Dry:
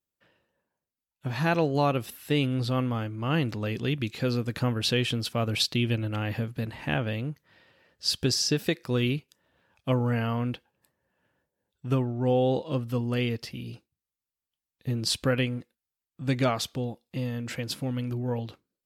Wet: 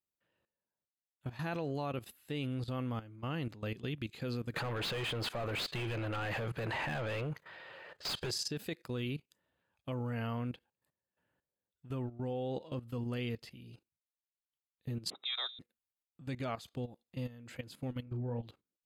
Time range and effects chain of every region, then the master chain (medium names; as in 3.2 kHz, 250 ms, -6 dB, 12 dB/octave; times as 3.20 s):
4.54–8.31 s: peaking EQ 250 Hz -12.5 dB 0.58 oct + overdrive pedal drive 34 dB, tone 1.3 kHz, clips at -11 dBFS
15.10–15.59 s: frequency inversion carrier 3.8 kHz + high-pass 260 Hz
18.03–18.43 s: low-pass 1.1 kHz 6 dB/octave + doubling 34 ms -7 dB
whole clip: band-stop 5.6 kHz, Q 6.8; level held to a coarse grid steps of 15 dB; trim -6.5 dB